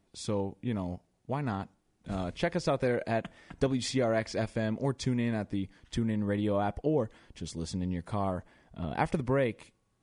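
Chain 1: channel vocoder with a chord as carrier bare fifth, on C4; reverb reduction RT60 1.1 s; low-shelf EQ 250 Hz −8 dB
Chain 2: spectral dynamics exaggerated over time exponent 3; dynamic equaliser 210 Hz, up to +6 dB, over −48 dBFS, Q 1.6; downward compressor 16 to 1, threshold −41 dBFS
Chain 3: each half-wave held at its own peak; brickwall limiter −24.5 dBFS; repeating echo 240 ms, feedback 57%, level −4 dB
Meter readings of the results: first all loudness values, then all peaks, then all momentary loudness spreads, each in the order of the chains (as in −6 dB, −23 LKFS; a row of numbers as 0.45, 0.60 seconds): −37.0, −48.0, −30.0 LKFS; −16.5, −29.5, −17.5 dBFS; 12, 8, 5 LU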